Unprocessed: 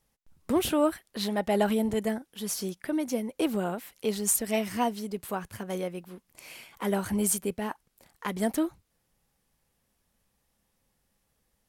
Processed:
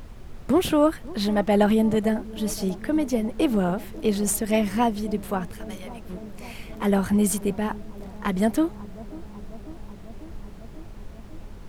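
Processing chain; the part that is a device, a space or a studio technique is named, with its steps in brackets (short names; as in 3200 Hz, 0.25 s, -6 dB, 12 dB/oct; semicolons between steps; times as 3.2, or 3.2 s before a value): 5.53–6.09 passive tone stack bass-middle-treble 10-0-10; car interior (bell 160 Hz +6.5 dB 0.66 oct; high shelf 4800 Hz -7 dB; brown noise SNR 13 dB); analogue delay 0.545 s, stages 4096, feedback 76%, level -19 dB; gain +5 dB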